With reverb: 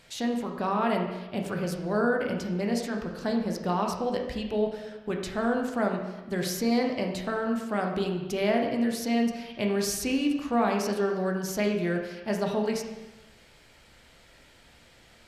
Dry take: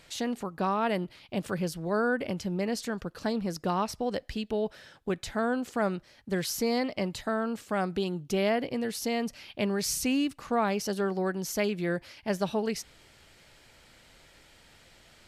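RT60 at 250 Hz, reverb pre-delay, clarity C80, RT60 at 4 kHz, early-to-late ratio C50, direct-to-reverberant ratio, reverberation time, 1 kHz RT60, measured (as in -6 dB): 1.2 s, 10 ms, 6.5 dB, 1.0 s, 4.5 dB, 1.5 dB, 1.1 s, 1.1 s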